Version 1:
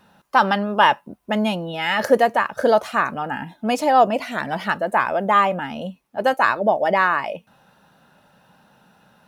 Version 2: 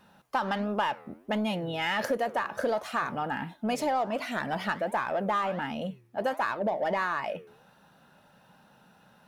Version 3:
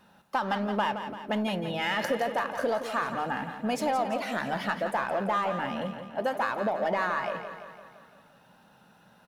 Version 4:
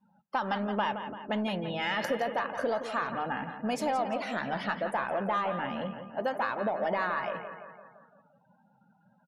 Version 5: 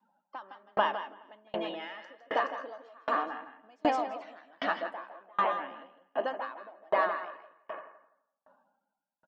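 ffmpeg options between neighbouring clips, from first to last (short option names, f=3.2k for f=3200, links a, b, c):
-filter_complex "[0:a]asplit=2[a][b];[b]asoftclip=type=tanh:threshold=-21dB,volume=-3dB[c];[a][c]amix=inputs=2:normalize=0,flanger=delay=4.9:depth=8.1:regen=-88:speed=1.4:shape=sinusoidal,acompressor=threshold=-21dB:ratio=6,volume=-4dB"
-af "bandreject=f=50:t=h:w=6,bandreject=f=100:t=h:w=6,bandreject=f=150:t=h:w=6,aecho=1:1:170|340|510|680|850|1020|1190:0.335|0.191|0.109|0.062|0.0354|0.0202|0.0115"
-af "afftdn=nr=27:nf=-52,volume=-2dB"
-filter_complex "[0:a]highpass=f=270:w=0.5412,highpass=f=270:w=1.3066,equalizer=f=310:t=q:w=4:g=9,equalizer=f=660:t=q:w=4:g=6,equalizer=f=1.1k:t=q:w=4:g=9,equalizer=f=1.8k:t=q:w=4:g=5,equalizer=f=3.1k:t=q:w=4:g=5,lowpass=f=6.6k:w=0.5412,lowpass=f=6.6k:w=1.3066,asplit=2[a][b];[b]aecho=0:1:159|211|423:0.668|0.112|0.237[c];[a][c]amix=inputs=2:normalize=0,aeval=exprs='val(0)*pow(10,-36*if(lt(mod(1.3*n/s,1),2*abs(1.3)/1000),1-mod(1.3*n/s,1)/(2*abs(1.3)/1000),(mod(1.3*n/s,1)-2*abs(1.3)/1000)/(1-2*abs(1.3)/1000))/20)':c=same"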